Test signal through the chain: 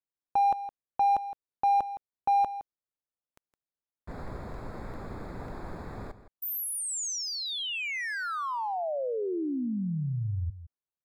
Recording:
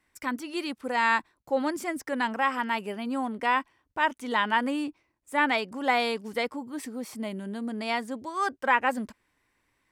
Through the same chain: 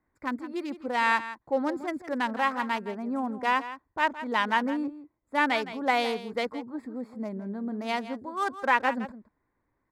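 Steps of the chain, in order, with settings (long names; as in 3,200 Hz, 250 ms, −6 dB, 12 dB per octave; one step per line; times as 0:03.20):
adaptive Wiener filter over 15 samples
single-tap delay 164 ms −13.5 dB
one half of a high-frequency compander decoder only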